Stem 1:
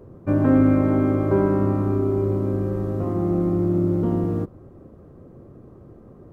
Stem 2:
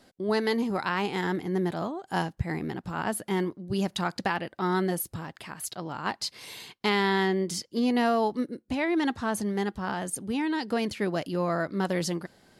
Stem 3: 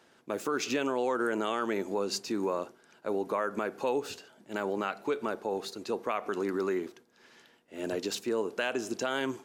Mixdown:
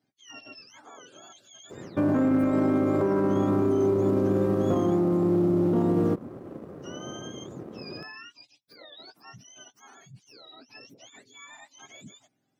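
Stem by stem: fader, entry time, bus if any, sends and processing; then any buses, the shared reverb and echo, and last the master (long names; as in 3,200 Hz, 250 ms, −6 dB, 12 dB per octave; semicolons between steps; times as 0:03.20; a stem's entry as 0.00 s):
+1.5 dB, 1.70 s, no send, speech leveller 2 s; leveller curve on the samples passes 1
−17.5 dB, 0.00 s, no send, frequency axis turned over on the octave scale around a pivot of 1,100 Hz
muted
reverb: not used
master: high-pass filter 170 Hz 12 dB per octave; brickwall limiter −16 dBFS, peak gain reduction 10.5 dB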